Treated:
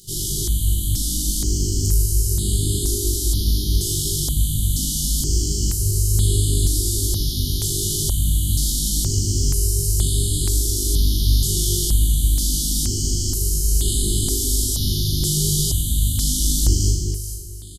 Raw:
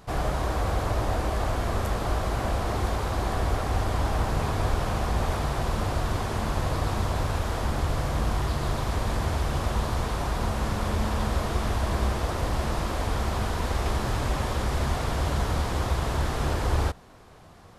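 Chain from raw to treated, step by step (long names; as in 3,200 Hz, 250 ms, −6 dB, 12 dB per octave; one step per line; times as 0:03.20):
bass and treble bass +2 dB, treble +15 dB
double-tracking delay 20 ms −4 dB
flutter between parallel walls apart 6.8 metres, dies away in 0.72 s
brick-wall band-stop 410–2,900 Hz
parametric band 11,000 Hz +5 dB 2.6 octaves
hum removal 213.5 Hz, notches 31
on a send: delay that swaps between a low-pass and a high-pass 217 ms, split 860 Hz, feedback 52%, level −2 dB
on the sum: step-sequenced phaser 2.1 Hz 250–5,700 Hz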